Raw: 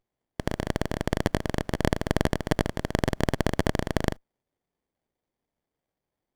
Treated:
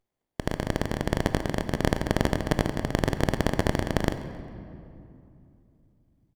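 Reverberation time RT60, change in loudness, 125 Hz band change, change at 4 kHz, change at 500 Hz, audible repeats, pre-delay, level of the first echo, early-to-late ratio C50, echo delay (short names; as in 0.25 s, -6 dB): 2.7 s, +0.5 dB, +0.5 dB, +0.5 dB, +0.5 dB, 2, 19 ms, -20.5 dB, 10.5 dB, 0.134 s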